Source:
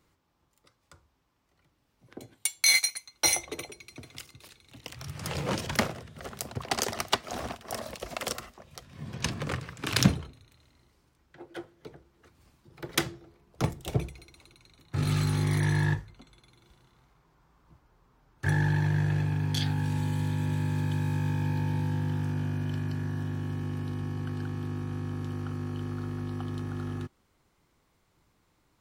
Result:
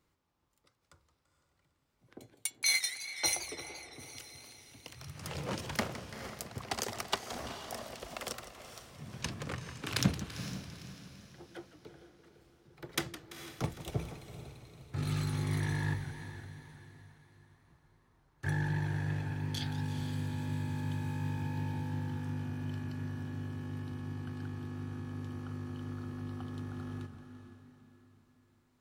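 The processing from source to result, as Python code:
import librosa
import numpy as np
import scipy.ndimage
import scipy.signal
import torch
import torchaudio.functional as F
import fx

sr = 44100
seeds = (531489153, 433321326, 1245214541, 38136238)

y = fx.echo_diffused(x, sr, ms=455, feedback_pct=43, wet_db=-11.0)
y = fx.env_lowpass(y, sr, base_hz=1100.0, full_db=-22.0, at=(2.49, 3.98), fade=0.02)
y = fx.echo_warbled(y, sr, ms=169, feedback_pct=65, rate_hz=2.8, cents=211, wet_db=-14.0)
y = y * librosa.db_to_amplitude(-7.0)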